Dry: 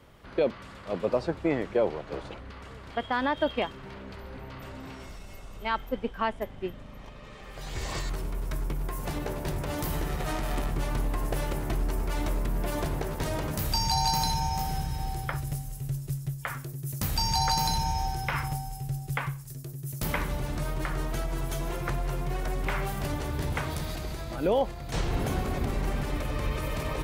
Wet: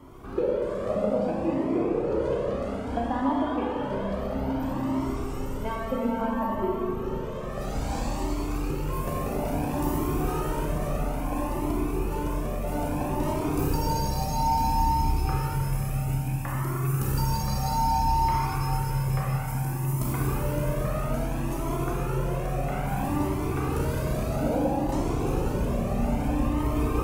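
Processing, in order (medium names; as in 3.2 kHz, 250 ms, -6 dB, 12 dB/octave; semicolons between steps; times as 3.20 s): rattle on loud lows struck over -30 dBFS, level -27 dBFS; de-hum 85.5 Hz, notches 36; compression, threshold -35 dBFS, peak gain reduction 14 dB; graphic EQ 250/500/1000/2000/4000 Hz +10/+3/+4/-6/-8 dB; Schroeder reverb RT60 3.9 s, combs from 30 ms, DRR -5 dB; Shepard-style flanger rising 0.6 Hz; trim +7 dB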